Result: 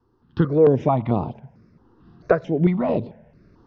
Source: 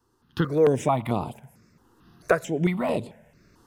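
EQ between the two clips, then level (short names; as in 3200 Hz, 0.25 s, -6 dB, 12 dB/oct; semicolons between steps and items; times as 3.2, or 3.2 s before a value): steep low-pass 5900 Hz 48 dB/oct; air absorption 190 m; bell 2500 Hz -9 dB 2.5 oct; +6.0 dB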